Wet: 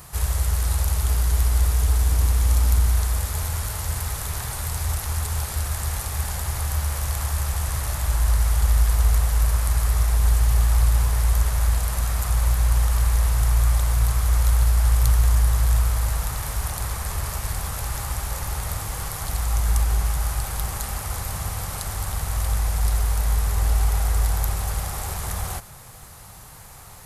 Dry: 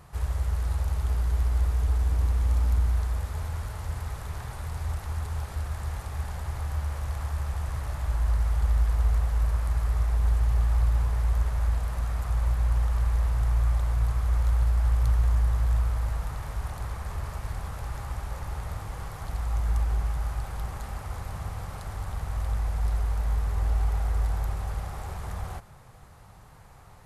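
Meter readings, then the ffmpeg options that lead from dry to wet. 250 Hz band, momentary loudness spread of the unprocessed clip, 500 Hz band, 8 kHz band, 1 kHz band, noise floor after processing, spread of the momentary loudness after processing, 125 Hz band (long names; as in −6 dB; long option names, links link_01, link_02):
+5.0 dB, 11 LU, +5.5 dB, +19.0 dB, +6.5 dB, −42 dBFS, 9 LU, +5.0 dB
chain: -af "crystalizer=i=4:c=0,volume=5dB"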